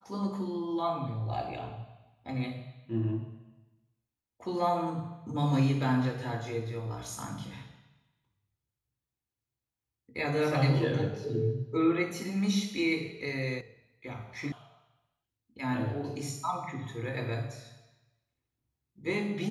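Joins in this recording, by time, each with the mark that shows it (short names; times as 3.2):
13.61 sound cut off
14.52 sound cut off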